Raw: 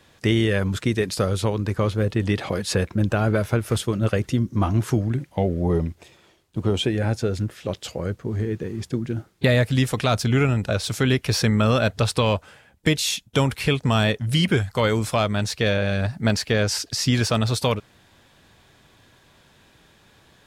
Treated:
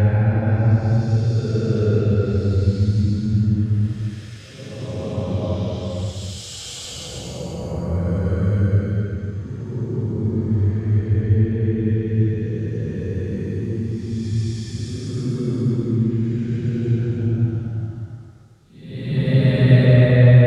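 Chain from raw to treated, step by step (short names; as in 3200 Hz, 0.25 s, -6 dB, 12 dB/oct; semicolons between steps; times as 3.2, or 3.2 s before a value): tone controls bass +10 dB, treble +6 dB; treble ducked by the level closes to 1800 Hz, closed at -9.5 dBFS; Paulstretch 8.1×, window 0.25 s, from 7.02; gain -1 dB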